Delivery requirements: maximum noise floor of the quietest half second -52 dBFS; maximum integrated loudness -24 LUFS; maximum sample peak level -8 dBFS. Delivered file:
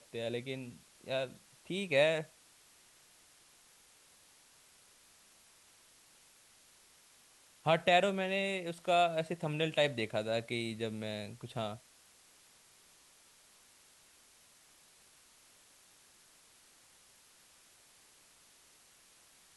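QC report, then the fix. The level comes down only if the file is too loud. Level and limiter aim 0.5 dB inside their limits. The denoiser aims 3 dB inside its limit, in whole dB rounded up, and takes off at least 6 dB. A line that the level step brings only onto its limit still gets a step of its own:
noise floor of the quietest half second -64 dBFS: OK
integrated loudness -34.0 LUFS: OK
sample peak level -15.0 dBFS: OK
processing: none

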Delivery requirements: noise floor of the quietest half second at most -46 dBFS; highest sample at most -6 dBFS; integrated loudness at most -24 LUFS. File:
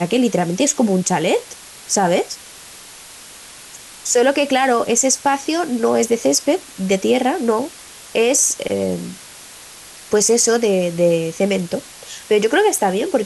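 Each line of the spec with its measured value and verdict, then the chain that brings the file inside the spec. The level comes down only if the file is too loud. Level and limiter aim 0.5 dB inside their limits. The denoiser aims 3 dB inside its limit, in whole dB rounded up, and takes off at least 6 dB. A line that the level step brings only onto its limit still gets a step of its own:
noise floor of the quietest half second -39 dBFS: fail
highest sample -5.0 dBFS: fail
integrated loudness -17.5 LUFS: fail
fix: denoiser 6 dB, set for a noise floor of -39 dBFS; gain -7 dB

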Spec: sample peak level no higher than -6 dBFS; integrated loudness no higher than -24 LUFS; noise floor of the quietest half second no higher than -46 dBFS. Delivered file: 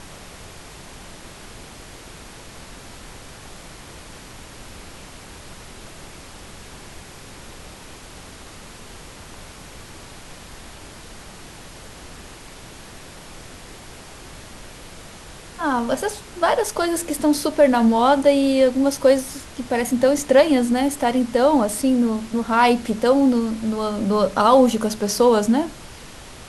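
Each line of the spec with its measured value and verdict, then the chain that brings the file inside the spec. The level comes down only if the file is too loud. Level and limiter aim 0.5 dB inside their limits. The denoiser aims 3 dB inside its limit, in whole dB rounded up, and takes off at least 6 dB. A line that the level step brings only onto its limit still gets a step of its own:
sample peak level -4.0 dBFS: fail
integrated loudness -19.0 LUFS: fail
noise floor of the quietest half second -40 dBFS: fail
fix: denoiser 6 dB, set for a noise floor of -40 dBFS; gain -5.5 dB

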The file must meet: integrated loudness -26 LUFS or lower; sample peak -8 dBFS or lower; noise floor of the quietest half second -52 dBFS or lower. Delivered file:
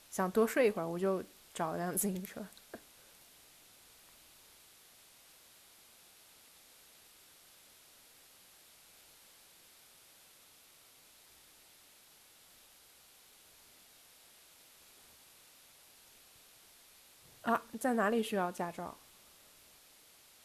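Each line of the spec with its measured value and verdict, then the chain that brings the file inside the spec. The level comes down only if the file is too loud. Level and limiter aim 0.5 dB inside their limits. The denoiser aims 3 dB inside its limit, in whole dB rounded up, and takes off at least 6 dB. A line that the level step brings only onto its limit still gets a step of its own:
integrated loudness -35.0 LUFS: OK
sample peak -18.0 dBFS: OK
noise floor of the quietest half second -62 dBFS: OK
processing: none

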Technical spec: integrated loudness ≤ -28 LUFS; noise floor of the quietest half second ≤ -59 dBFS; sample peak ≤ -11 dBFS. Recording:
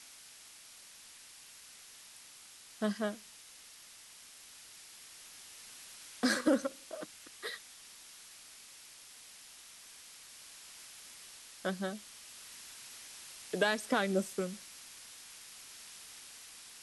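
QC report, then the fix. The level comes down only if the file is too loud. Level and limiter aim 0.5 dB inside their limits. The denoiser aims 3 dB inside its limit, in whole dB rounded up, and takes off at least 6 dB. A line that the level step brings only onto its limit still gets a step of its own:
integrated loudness -38.5 LUFS: OK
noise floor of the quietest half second -55 dBFS: fail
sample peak -16.0 dBFS: OK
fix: denoiser 7 dB, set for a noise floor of -55 dBFS

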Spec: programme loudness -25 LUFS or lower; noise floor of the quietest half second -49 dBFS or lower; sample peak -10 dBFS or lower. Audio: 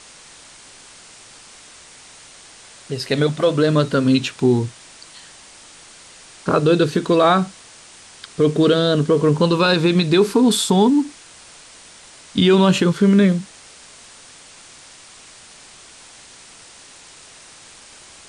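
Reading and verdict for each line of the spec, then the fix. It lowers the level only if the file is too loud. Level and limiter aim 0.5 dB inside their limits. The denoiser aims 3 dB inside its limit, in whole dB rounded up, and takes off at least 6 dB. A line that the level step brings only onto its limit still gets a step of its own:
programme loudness -17.0 LUFS: fail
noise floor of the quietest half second -44 dBFS: fail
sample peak -5.5 dBFS: fail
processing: gain -8.5 dB

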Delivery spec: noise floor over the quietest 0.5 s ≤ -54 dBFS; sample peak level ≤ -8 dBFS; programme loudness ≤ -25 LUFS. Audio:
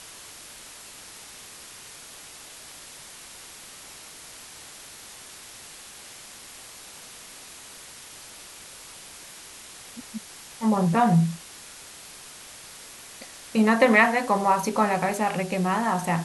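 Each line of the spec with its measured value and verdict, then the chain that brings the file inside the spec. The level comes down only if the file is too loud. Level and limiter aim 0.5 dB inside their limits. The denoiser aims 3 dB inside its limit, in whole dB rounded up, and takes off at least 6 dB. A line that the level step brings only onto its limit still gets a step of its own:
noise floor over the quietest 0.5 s -44 dBFS: fail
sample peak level -5.5 dBFS: fail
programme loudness -22.0 LUFS: fail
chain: denoiser 10 dB, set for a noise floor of -44 dBFS; gain -3.5 dB

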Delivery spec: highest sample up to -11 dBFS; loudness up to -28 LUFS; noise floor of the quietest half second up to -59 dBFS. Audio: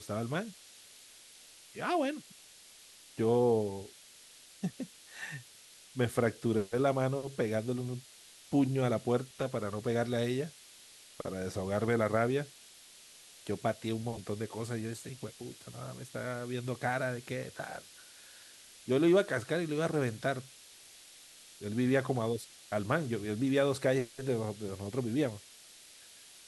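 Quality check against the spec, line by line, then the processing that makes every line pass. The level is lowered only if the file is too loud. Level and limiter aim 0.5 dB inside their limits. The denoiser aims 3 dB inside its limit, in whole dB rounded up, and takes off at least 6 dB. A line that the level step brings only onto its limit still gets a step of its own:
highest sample -14.0 dBFS: OK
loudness -33.5 LUFS: OK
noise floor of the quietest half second -56 dBFS: fail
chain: denoiser 6 dB, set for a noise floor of -56 dBFS

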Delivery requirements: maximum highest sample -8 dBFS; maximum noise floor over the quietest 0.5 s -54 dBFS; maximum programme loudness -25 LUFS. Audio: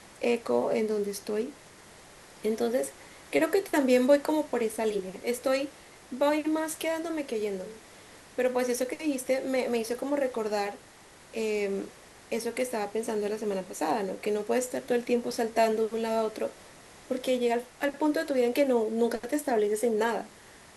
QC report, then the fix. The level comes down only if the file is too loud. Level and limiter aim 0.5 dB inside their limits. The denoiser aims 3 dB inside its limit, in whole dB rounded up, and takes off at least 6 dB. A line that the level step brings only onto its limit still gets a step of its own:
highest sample -11.0 dBFS: OK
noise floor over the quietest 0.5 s -53 dBFS: fail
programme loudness -29.0 LUFS: OK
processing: denoiser 6 dB, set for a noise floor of -53 dBFS

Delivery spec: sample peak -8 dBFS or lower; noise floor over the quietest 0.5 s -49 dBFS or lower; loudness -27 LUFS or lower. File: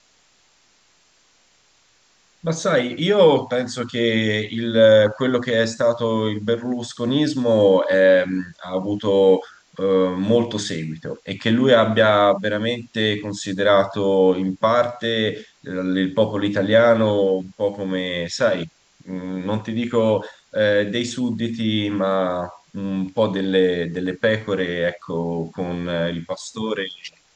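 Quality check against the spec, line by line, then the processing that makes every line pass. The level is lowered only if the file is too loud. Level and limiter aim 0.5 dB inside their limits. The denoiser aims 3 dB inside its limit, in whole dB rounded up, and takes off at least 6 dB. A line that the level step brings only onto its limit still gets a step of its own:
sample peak -3.5 dBFS: fail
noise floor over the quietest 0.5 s -59 dBFS: OK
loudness -20.0 LUFS: fail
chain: gain -7.5 dB

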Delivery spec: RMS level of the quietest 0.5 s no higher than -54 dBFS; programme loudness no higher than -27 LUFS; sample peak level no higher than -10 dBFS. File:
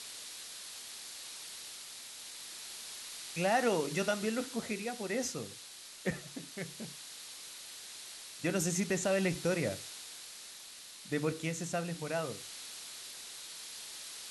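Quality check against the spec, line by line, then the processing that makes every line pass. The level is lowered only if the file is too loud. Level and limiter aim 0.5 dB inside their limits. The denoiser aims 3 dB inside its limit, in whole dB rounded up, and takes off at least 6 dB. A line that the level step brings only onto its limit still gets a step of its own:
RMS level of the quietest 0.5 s -50 dBFS: fail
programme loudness -37.5 LUFS: OK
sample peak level -18.0 dBFS: OK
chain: denoiser 7 dB, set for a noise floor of -50 dBFS

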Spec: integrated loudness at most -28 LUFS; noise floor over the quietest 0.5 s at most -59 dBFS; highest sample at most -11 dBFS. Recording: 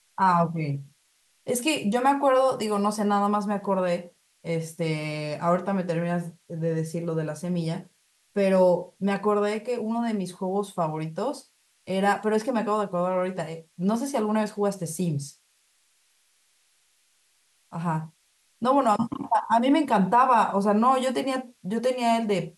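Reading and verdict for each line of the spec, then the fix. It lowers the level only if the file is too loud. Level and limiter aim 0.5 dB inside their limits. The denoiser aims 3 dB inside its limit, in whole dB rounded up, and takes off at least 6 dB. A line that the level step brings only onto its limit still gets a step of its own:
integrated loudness -25.5 LUFS: fail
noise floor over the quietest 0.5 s -66 dBFS: OK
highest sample -9.0 dBFS: fail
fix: gain -3 dB

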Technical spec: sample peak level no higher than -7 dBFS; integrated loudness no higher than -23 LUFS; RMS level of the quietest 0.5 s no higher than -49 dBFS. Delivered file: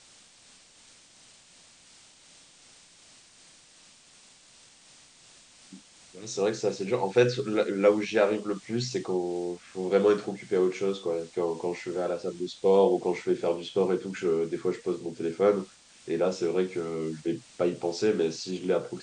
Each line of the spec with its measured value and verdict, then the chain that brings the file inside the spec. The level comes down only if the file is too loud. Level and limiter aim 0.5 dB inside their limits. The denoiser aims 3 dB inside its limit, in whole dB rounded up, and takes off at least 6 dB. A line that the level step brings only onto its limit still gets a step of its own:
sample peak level -9.5 dBFS: OK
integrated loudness -28.0 LUFS: OK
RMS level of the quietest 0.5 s -56 dBFS: OK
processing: none

